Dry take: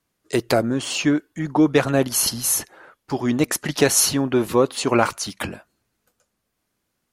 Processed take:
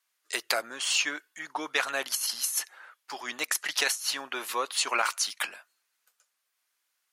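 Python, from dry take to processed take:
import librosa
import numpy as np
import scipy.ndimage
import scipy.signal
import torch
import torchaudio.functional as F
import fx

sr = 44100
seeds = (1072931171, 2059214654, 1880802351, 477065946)

y = scipy.signal.sosfilt(scipy.signal.butter(2, 1300.0, 'highpass', fs=sr, output='sos'), x)
y = fx.over_compress(y, sr, threshold_db=-24.0, ratio=-0.5)
y = F.gain(torch.from_numpy(y), -2.0).numpy()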